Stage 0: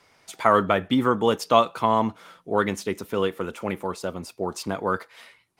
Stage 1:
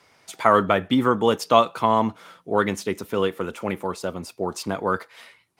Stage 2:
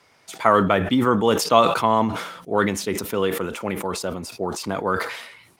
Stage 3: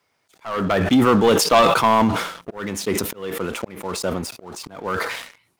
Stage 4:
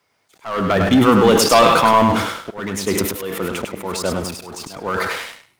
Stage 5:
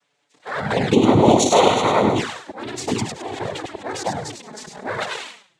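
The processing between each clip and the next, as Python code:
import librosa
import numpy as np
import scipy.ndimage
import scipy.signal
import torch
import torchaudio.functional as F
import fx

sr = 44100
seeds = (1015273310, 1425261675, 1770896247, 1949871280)

y1 = scipy.signal.sosfilt(scipy.signal.butter(2, 55.0, 'highpass', fs=sr, output='sos'), x)
y1 = F.gain(torch.from_numpy(y1), 1.5).numpy()
y2 = fx.sustainer(y1, sr, db_per_s=61.0)
y3 = fx.leveller(y2, sr, passes=3)
y3 = fx.auto_swell(y3, sr, attack_ms=516.0)
y3 = fx.quant_dither(y3, sr, seeds[0], bits=12, dither='none')
y3 = F.gain(torch.from_numpy(y3), -5.5).numpy()
y4 = fx.echo_feedback(y3, sr, ms=101, feedback_pct=17, wet_db=-5.0)
y4 = F.gain(torch.from_numpy(y4), 2.0).numpy()
y5 = fx.notch_comb(y4, sr, f0_hz=1500.0)
y5 = fx.noise_vocoder(y5, sr, seeds[1], bands=6)
y5 = fx.env_flanger(y5, sr, rest_ms=7.0, full_db=-13.0)
y5 = F.gain(torch.from_numpy(y5), 1.0).numpy()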